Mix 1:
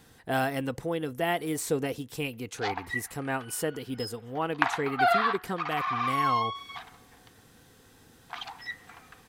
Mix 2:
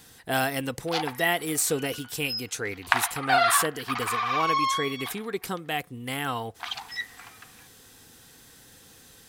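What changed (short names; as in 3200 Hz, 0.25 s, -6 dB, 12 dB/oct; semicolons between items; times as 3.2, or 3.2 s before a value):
background: entry -1.70 s; master: add high shelf 2300 Hz +10.5 dB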